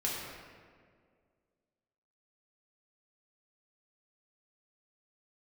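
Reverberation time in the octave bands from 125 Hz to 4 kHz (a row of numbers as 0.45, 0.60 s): 2.1, 2.2, 2.2, 1.7, 1.6, 1.1 s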